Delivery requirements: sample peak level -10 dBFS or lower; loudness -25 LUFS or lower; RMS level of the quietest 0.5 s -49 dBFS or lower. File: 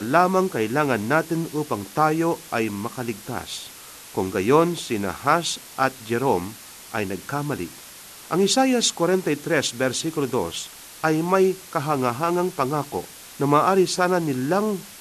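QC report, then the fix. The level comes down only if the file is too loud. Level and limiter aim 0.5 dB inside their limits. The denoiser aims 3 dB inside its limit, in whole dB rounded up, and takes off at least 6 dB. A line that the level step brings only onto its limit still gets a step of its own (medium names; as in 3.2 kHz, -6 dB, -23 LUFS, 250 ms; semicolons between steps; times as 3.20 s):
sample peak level -3.5 dBFS: fail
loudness -23.0 LUFS: fail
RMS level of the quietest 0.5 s -43 dBFS: fail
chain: noise reduction 7 dB, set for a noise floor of -43 dBFS; trim -2.5 dB; peak limiter -10.5 dBFS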